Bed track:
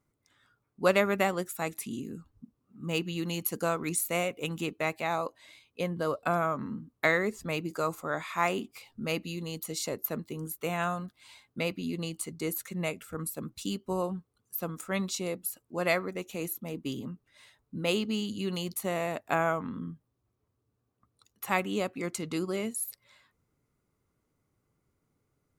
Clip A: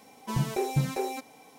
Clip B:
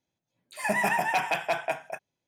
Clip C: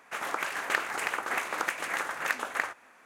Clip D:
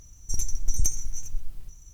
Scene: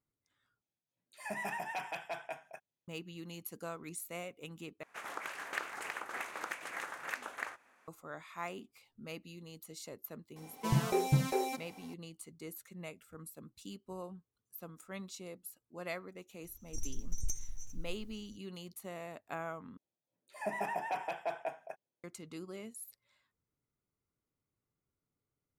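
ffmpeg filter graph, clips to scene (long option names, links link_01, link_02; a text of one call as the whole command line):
ffmpeg -i bed.wav -i cue0.wav -i cue1.wav -i cue2.wav -i cue3.wav -filter_complex "[2:a]asplit=2[link_01][link_02];[0:a]volume=-13.5dB[link_03];[link_02]equalizer=frequency=490:width_type=o:width=2.5:gain=11[link_04];[link_03]asplit=4[link_05][link_06][link_07][link_08];[link_05]atrim=end=0.614[link_09];[link_01]atrim=end=2.27,asetpts=PTS-STARTPTS,volume=-13.5dB[link_10];[link_06]atrim=start=2.876:end=4.834[link_11];[3:a]atrim=end=3.05,asetpts=PTS-STARTPTS,volume=-10dB[link_12];[link_07]atrim=start=7.876:end=19.774[link_13];[link_04]atrim=end=2.27,asetpts=PTS-STARTPTS,volume=-18dB[link_14];[link_08]atrim=start=22.036[link_15];[1:a]atrim=end=1.58,asetpts=PTS-STARTPTS,volume=-2dB,afade=type=in:duration=0.004:curve=hsin,afade=type=out:start_time=1.576:duration=0.004:curve=hsin,adelay=10360[link_16];[4:a]atrim=end=1.93,asetpts=PTS-STARTPTS,volume=-13dB,afade=type=in:duration=0.004:curve=hsin,afade=type=out:start_time=1.926:duration=0.004:curve=hsin,adelay=16440[link_17];[link_09][link_10]acrossfade=duration=0.004:curve1=hsin:curve2=hsin[link_18];[link_18][link_11]acrossfade=duration=0.004:curve1=hsin:curve2=hsin[link_19];[link_19][link_12]acrossfade=duration=0.004:curve1=hsin:curve2=hsin[link_20];[link_20][link_13]acrossfade=duration=0.004:curve1=hsin:curve2=hsin[link_21];[link_21][link_14]acrossfade=duration=0.004:curve1=hsin:curve2=hsin[link_22];[link_22][link_15]acrossfade=duration=0.004:curve1=hsin:curve2=hsin[link_23];[link_23][link_16][link_17]amix=inputs=3:normalize=0" out.wav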